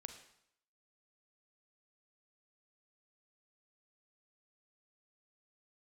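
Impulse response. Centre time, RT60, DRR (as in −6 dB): 17 ms, 0.70 s, 6.5 dB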